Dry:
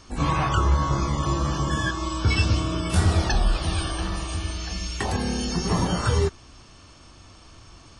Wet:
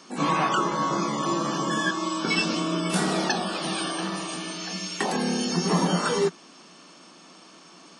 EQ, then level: elliptic high-pass 170 Hz; +2.5 dB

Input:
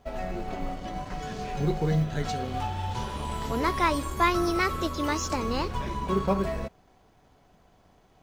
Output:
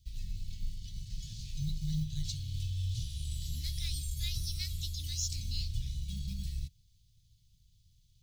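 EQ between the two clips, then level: elliptic band-stop 120–3800 Hz, stop band 60 dB; 0.0 dB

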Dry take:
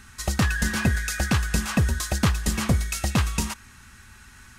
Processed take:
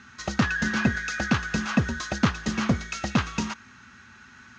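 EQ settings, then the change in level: distance through air 240 m; cabinet simulation 130–7300 Hz, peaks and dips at 240 Hz +5 dB, 1.4 kHz +5 dB, 6.5 kHz +7 dB; treble shelf 4.8 kHz +11 dB; 0.0 dB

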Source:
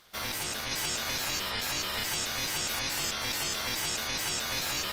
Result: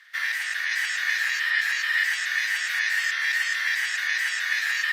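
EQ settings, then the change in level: resonant high-pass 1.8 kHz, resonance Q 14; treble shelf 7.5 kHz -11 dB; 0.0 dB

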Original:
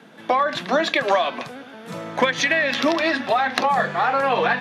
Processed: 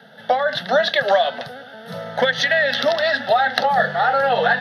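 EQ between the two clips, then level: static phaser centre 1.6 kHz, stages 8; +4.5 dB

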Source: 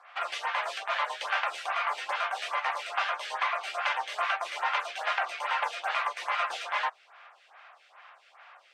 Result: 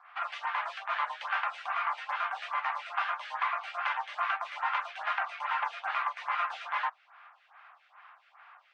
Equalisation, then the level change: ladder band-pass 1.1 kHz, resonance 30%; tilt EQ +4 dB/octave; peaking EQ 1.3 kHz +2 dB; +6.5 dB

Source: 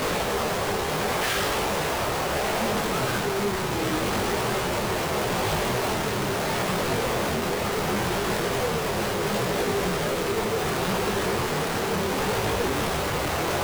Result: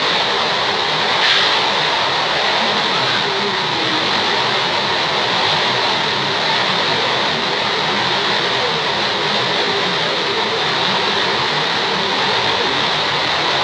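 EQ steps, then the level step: cabinet simulation 110–5000 Hz, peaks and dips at 140 Hz +4 dB, 940 Hz +7 dB, 1.9 kHz +6 dB, 4.1 kHz +5 dB; tilt EQ +2 dB/octave; peaking EQ 3.6 kHz +8.5 dB 0.46 oct; +6.0 dB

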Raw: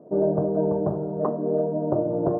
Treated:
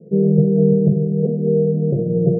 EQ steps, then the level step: rippled Chebyshev low-pass 690 Hz, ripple 9 dB; tilt EQ -3.5 dB/octave; static phaser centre 420 Hz, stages 8; +7.0 dB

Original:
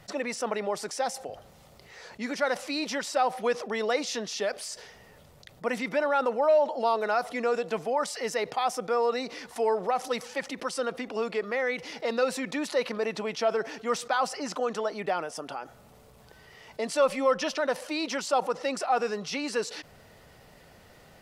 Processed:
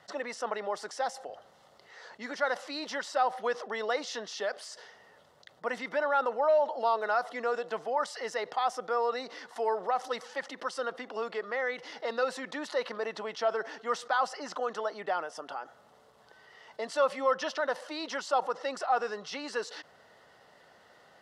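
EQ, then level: band-pass filter 1.5 kHz, Q 0.5; peaking EQ 2.4 kHz -12.5 dB 0.24 oct; 0.0 dB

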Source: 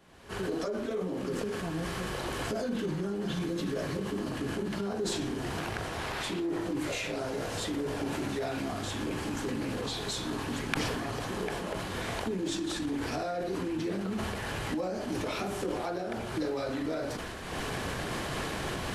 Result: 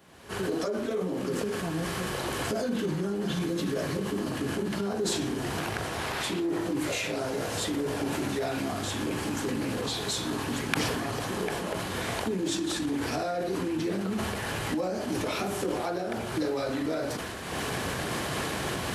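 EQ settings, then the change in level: high-pass 68 Hz; treble shelf 10 kHz +7.5 dB; +3.0 dB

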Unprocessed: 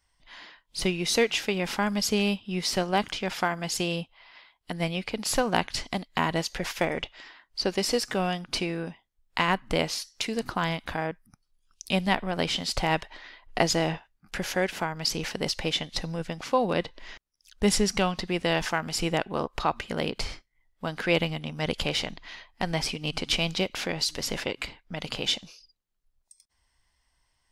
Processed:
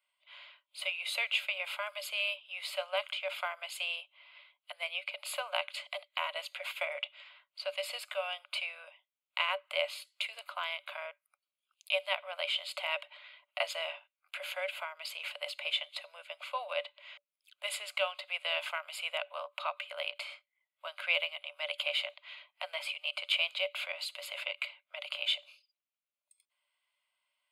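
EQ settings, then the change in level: rippled Chebyshev high-pass 560 Hz, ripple 9 dB; static phaser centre 1.2 kHz, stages 8; +2.0 dB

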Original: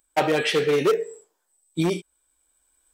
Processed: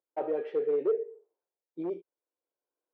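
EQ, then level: ladder band-pass 530 Hz, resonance 40%; bass shelf 470 Hz +6 dB; -3.0 dB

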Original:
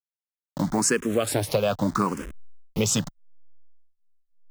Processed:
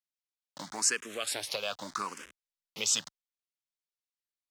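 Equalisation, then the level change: band-pass filter 4.1 kHz, Q 0.73; 0.0 dB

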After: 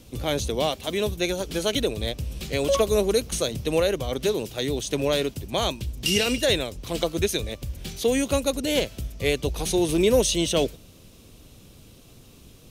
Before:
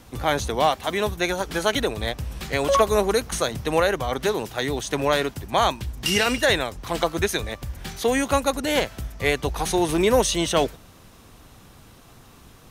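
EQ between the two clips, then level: high-order bell 1.2 kHz -10.5 dB; 0.0 dB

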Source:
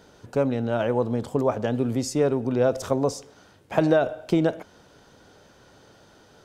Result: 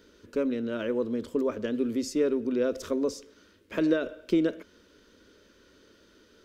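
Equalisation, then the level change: peaking EQ 8.8 kHz -7 dB 1.1 oct; static phaser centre 320 Hz, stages 4; -1.5 dB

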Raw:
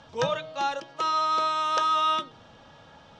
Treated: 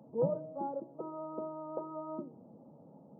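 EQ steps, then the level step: Gaussian low-pass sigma 14 samples; high-pass 180 Hz 24 dB/octave; bass shelf 260 Hz +8.5 dB; 0.0 dB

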